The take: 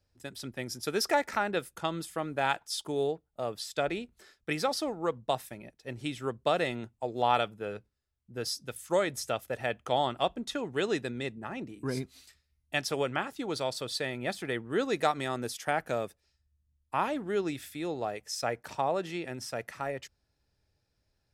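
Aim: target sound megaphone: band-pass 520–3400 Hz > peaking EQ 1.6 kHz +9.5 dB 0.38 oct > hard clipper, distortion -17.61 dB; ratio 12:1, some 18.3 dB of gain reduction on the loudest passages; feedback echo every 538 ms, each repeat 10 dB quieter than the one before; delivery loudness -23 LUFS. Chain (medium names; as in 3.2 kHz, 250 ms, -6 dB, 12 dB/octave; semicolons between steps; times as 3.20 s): compression 12:1, threshold -40 dBFS; band-pass 520–3400 Hz; peaking EQ 1.6 kHz +9.5 dB 0.38 oct; feedback delay 538 ms, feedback 32%, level -10 dB; hard clipper -34 dBFS; trim +24 dB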